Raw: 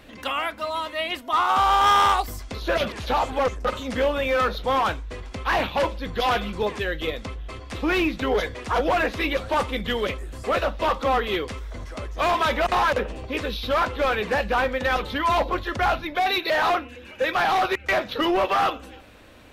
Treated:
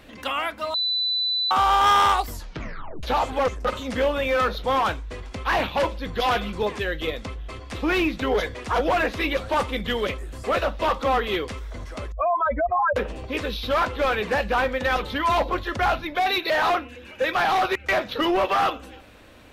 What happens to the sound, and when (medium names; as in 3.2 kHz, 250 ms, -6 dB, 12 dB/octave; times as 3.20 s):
0.74–1.51 s: bleep 3.99 kHz -21 dBFS
2.29 s: tape stop 0.74 s
12.12–12.96 s: spectral contrast enhancement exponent 3.1